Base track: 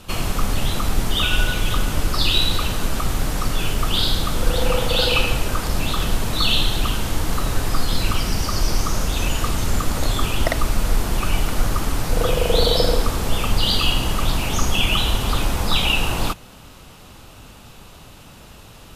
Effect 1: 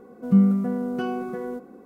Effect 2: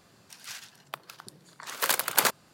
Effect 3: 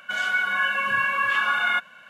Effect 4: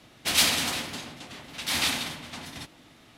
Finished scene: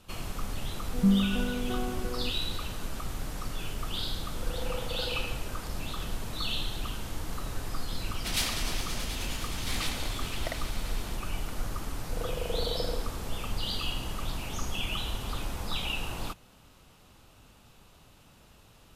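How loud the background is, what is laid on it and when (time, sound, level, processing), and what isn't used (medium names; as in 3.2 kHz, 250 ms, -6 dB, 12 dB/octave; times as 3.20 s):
base track -14 dB
0.71 s: add 1 -6.5 dB
7.99 s: add 4 -9 dB + echo with a slow build-up 105 ms, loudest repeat 5, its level -13.5 dB
not used: 2, 3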